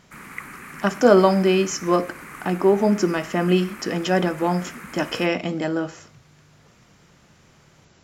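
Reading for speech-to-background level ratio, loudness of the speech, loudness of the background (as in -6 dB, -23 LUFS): 17.5 dB, -21.0 LUFS, -38.5 LUFS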